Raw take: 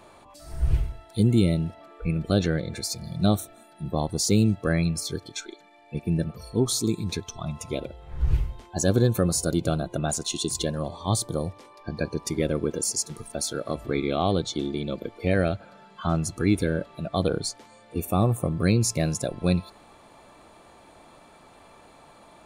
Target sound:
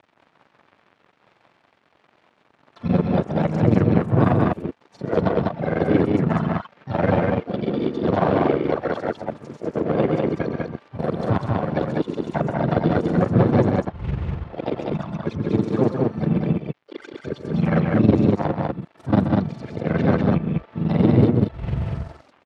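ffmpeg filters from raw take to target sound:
ffmpeg -i in.wav -filter_complex "[0:a]areverse,acrossover=split=1800[link_01][link_02];[link_01]aeval=exprs='clip(val(0),-1,0.106)':channel_layout=same[link_03];[link_02]acompressor=threshold=-45dB:ratio=8[link_04];[link_03][link_04]amix=inputs=2:normalize=0,tremolo=f=22:d=0.889,aeval=exprs='sgn(val(0))*max(abs(val(0))-0.00355,0)':channel_layout=same,asplit=3[link_05][link_06][link_07];[link_06]asetrate=37084,aresample=44100,atempo=1.18921,volume=-10dB[link_08];[link_07]asetrate=58866,aresample=44100,atempo=0.749154,volume=-6dB[link_09];[link_05][link_08][link_09]amix=inputs=3:normalize=0,highpass=110,lowpass=2800,asplit=2[link_10][link_11];[link_11]aecho=0:1:128.3|198.3:0.355|0.794[link_12];[link_10][link_12]amix=inputs=2:normalize=0,volume=8.5dB" out.wav

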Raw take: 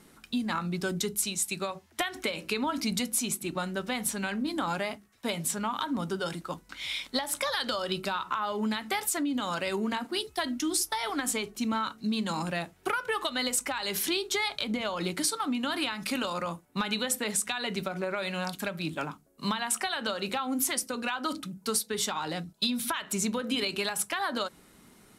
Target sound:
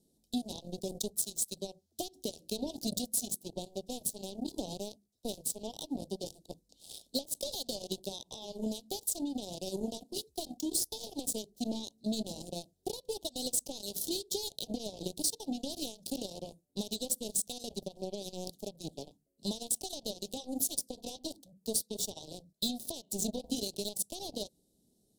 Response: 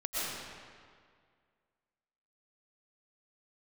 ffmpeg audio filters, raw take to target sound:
-af "aeval=exprs='0.141*(cos(1*acos(clip(val(0)/0.141,-1,1)))-cos(1*PI/2))+0.0251*(cos(7*acos(clip(val(0)/0.141,-1,1)))-cos(7*PI/2))':channel_layout=same,asuperstop=centerf=1600:order=8:qfactor=0.52,volume=-2.5dB"

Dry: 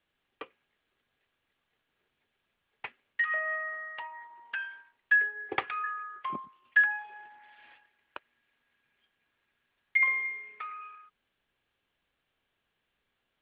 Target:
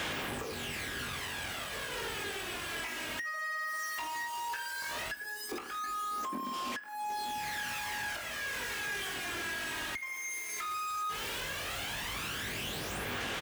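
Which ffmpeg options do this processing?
ffmpeg -i in.wav -filter_complex "[0:a]aeval=exprs='val(0)+0.5*0.0251*sgn(val(0))':channel_layout=same,aecho=1:1:20|45|76.25|115.3|164.1:0.631|0.398|0.251|0.158|0.1,aphaser=in_gain=1:out_gain=1:delay=3.2:decay=0.53:speed=0.15:type=sinusoidal,acompressor=threshold=-29dB:ratio=12,alimiter=level_in=2dB:limit=-24dB:level=0:latency=1:release=412,volume=-2dB,asettb=1/sr,asplit=3[link_01][link_02][link_03];[link_01]atrim=end=5.144[link_04];[link_02]atrim=start=5.14:end=7.38,asetpts=PTS-STARTPTS,afade=type=in:duration=0.004:curve=qsin,afade=type=out:start_time=2.236:duration=0.004:curve=qsin,equalizer=frequency=125:width_type=o:width=1:gain=-12,equalizer=frequency=250:width_type=o:width=1:gain=11,equalizer=frequency=2000:width_type=o:width=1:gain=-5[link_05];[link_03]atrim=start=7.376[link_06];[link_04][link_05]acrossfade=duration=0.004:curve1=hsin:curve2=qsin[link_07];[link_07][link_06]acrossfade=duration=0.004:curve1=qsin:curve2=hsin,asoftclip=type=tanh:threshold=-31.5dB,highpass=53" out.wav

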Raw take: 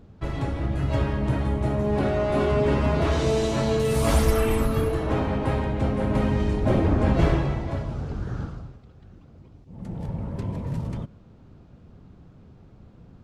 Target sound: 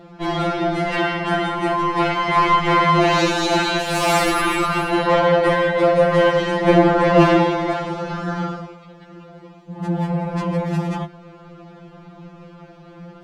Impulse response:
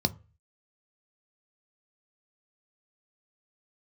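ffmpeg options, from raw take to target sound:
-filter_complex "[0:a]asplit=2[link_01][link_02];[link_02]highpass=frequency=720:poles=1,volume=22dB,asoftclip=type=tanh:threshold=-7.5dB[link_03];[link_01][link_03]amix=inputs=2:normalize=0,lowpass=frequency=2400:poles=1,volume=-6dB,afftfilt=real='re*2.83*eq(mod(b,8),0)':imag='im*2.83*eq(mod(b,8),0)':win_size=2048:overlap=0.75,volume=5.5dB"

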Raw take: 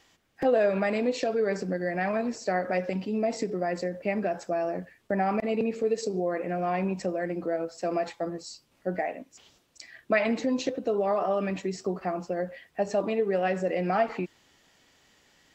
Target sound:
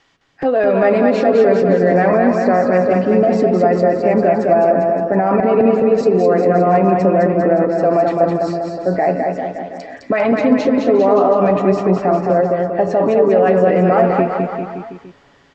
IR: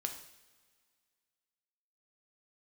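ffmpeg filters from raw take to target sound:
-filter_complex "[0:a]lowpass=5200,equalizer=frequency=1300:width_type=o:width=0.95:gain=4,aecho=1:1:7.2:0.31,acrossover=split=1300[link_01][link_02];[link_01]dynaudnorm=framelen=280:gausssize=5:maxgain=13dB[link_03];[link_03][link_02]amix=inputs=2:normalize=0,alimiter=limit=-10.5dB:level=0:latency=1:release=26,asplit=2[link_04][link_05];[link_05]aecho=0:1:210|399|569.1|722.2|860:0.631|0.398|0.251|0.158|0.1[link_06];[link_04][link_06]amix=inputs=2:normalize=0,volume=3.5dB"

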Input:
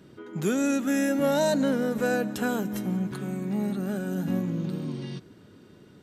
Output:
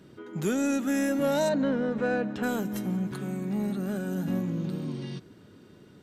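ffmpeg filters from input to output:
ffmpeg -i in.wav -filter_complex "[0:a]asplit=2[link_01][link_02];[link_02]asoftclip=type=tanh:threshold=-23.5dB,volume=-5dB[link_03];[link_01][link_03]amix=inputs=2:normalize=0,asplit=3[link_04][link_05][link_06];[link_04]afade=type=out:start_time=1.48:duration=0.02[link_07];[link_05]lowpass=3100,afade=type=in:start_time=1.48:duration=0.02,afade=type=out:start_time=2.42:duration=0.02[link_08];[link_06]afade=type=in:start_time=2.42:duration=0.02[link_09];[link_07][link_08][link_09]amix=inputs=3:normalize=0,volume=-4.5dB" out.wav

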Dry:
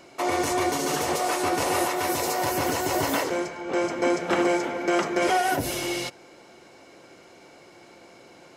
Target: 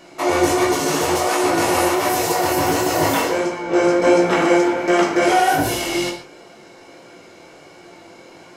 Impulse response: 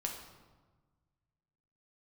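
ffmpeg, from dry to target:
-filter_complex "[0:a]flanger=delay=16:depth=6.9:speed=1.4,asettb=1/sr,asplit=3[link_01][link_02][link_03];[link_01]atrim=end=3.504[link_04];[link_02]atrim=start=3.5:end=4.29,asetpts=PTS-STARTPTS,afade=type=in:duration=0.004:curve=qsin,afade=type=out:start_time=0.786:duration=0.004:curve=qsin,asplit=2[link_05][link_06];[link_06]adelay=17,volume=-5.5dB[link_07];[link_05][link_07]amix=inputs=2:normalize=0,atrim=end_sample=34839[link_08];[link_03]atrim=start=4.286[link_09];[link_04][link_08]acrossfade=duration=0.004:curve1=hsin:curve2=qsin[link_10];[link_10][link_09]acrossfade=duration=0.004:curve1=qsin:curve2=hsin[link_11];[1:a]atrim=start_sample=2205,afade=type=out:start_time=0.2:duration=0.01,atrim=end_sample=9261[link_12];[link_11][link_12]afir=irnorm=-1:irlink=0,volume=9dB"

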